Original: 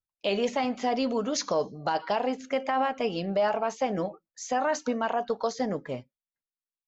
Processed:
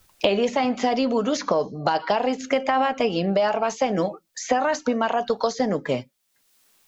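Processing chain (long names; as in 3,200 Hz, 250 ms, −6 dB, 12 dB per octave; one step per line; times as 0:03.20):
multiband upward and downward compressor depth 100%
level +5 dB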